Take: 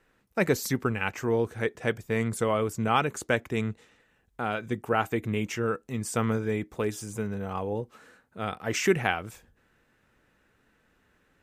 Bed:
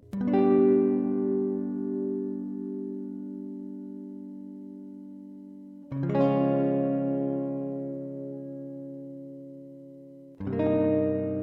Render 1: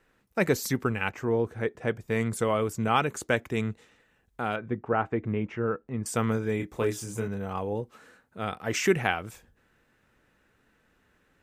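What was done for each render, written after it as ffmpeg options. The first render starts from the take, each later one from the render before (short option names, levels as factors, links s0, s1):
-filter_complex "[0:a]asettb=1/sr,asplit=3[s0][s1][s2];[s0]atrim=end=1.094[s3];[s1]atrim=start=1.09:end=2.08,asetpts=PTS-STARTPTS,afade=t=in:d=0.004:c=qsin,afade=t=out:st=0.986:d=0.004:c=qsin,highshelf=f=2400:g=-9.5[s4];[s2]atrim=start=2.076[s5];[s3][s4]acrossfade=d=0.004:c1=hsin:c2=qsin[s6];[s6][s5]acrossfade=d=0.004:c1=qsin:c2=hsin,asettb=1/sr,asplit=3[s7][s8][s9];[s7]atrim=end=4.564[s10];[s8]atrim=start=4.56:end=6.06,asetpts=PTS-STARTPTS,afade=t=in:d=0.004:c=qsin,afade=t=out:st=1.496:d=0.004:c=qsin,lowpass=1600[s11];[s9]atrim=start=6.056[s12];[s10][s11]acrossfade=d=0.004:c1=hsin:c2=qsin[s13];[s13][s12]acrossfade=d=0.004:c1=qsin:c2=hsin,asettb=1/sr,asplit=3[s14][s15][s16];[s14]atrim=end=6.574[s17];[s15]atrim=start=6.57:end=7.28,asetpts=PTS-STARTPTS,afade=t=in:d=0.004:c=qsin,afade=t=out:st=0.706:d=0.004:c=qsin,asplit=2[s18][s19];[s19]adelay=26,volume=0.596[s20];[s18][s20]amix=inputs=2:normalize=0,atrim=end_sample=31311[s21];[s16]atrim=start=7.276[s22];[s17][s21]acrossfade=d=0.004:c1=hsin:c2=qsin[s23];[s23][s22]acrossfade=d=0.004:c1=qsin:c2=hsin"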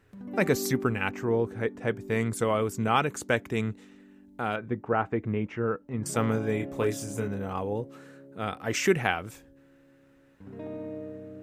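-filter_complex "[1:a]volume=0.211[s0];[0:a][s0]amix=inputs=2:normalize=0"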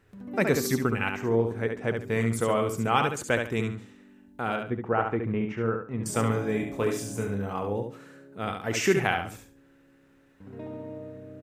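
-af "aecho=1:1:70|140|210:0.531|0.133|0.0332"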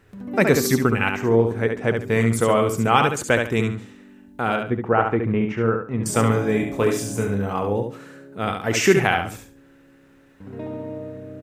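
-af "volume=2.24,alimiter=limit=0.708:level=0:latency=1"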